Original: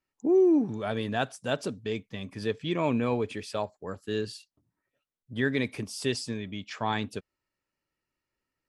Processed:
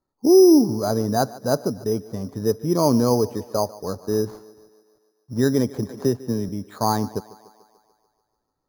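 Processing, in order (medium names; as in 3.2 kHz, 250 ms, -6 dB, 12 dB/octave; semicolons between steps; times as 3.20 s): 4.02–5.38 s: CVSD coder 32 kbps; low-pass 1.2 kHz 24 dB/octave; sample-and-hold 8×; thinning echo 146 ms, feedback 63%, high-pass 200 Hz, level -19 dB; 5.89–6.49 s: three bands compressed up and down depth 40%; trim +9 dB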